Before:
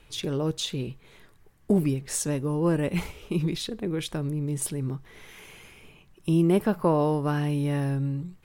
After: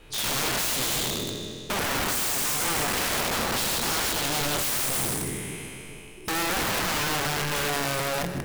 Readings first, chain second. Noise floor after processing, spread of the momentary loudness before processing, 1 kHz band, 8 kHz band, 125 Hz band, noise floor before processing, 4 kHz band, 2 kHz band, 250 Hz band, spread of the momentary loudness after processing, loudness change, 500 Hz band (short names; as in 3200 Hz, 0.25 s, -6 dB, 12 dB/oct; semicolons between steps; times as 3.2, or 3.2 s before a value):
-41 dBFS, 11 LU, +6.5 dB, +10.0 dB, -8.0 dB, -57 dBFS, +10.5 dB, +13.0 dB, -8.0 dB, 9 LU, +1.5 dB, -3.5 dB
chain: spectral trails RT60 2.58 s; bell 400 Hz +4 dB 1.6 oct; notches 60/120/180/240/300/360/420/480/540 Hz; limiter -15 dBFS, peak gain reduction 9.5 dB; wrapped overs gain 24.5 dB; lo-fi delay 0.156 s, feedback 35%, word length 10-bit, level -12 dB; gain +2.5 dB